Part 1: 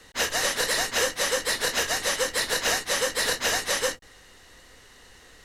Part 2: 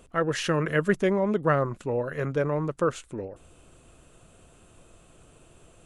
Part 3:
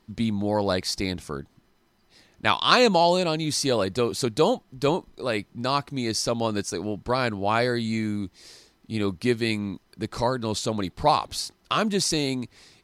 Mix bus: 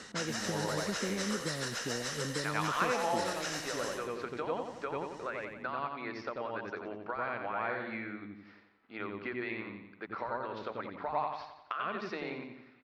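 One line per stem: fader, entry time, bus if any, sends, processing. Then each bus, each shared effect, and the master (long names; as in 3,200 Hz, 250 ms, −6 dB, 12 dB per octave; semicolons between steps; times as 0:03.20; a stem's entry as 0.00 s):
+2.5 dB, 0.00 s, bus A, no send, echo send −24 dB, automatic ducking −11 dB, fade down 0.25 s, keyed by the third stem
−3.0 dB, 0.00 s, no bus, no send, no echo send, downward compressor, threshold −26 dBFS, peak gain reduction 9 dB; resonant band-pass 230 Hz, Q 1.3; multiband upward and downward compressor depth 40%
−4.5 dB, 0.00 s, bus A, no send, echo send −8 dB, transient designer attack 0 dB, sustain −5 dB; inverse Chebyshev low-pass filter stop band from 8,500 Hz, stop band 70 dB; spectral tilt +3 dB per octave
bus A: 0.0 dB, loudspeaker in its box 380–9,300 Hz, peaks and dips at 1,400 Hz +9 dB, 5,400 Hz +7 dB, 7,700 Hz +3 dB; downward compressor 12 to 1, threshold −35 dBFS, peak gain reduction 22.5 dB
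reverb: not used
echo: repeating echo 88 ms, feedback 51%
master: no processing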